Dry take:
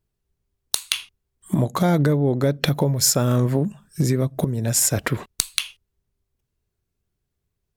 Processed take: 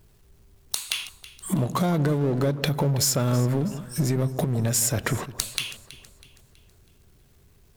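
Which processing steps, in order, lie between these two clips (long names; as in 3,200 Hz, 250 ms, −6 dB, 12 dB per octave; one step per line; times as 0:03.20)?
downward compressor 3 to 1, threshold −29 dBFS, peak gain reduction 11.5 dB
power curve on the samples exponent 0.7
delay that swaps between a low-pass and a high-pass 162 ms, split 1,200 Hz, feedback 65%, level −13.5 dB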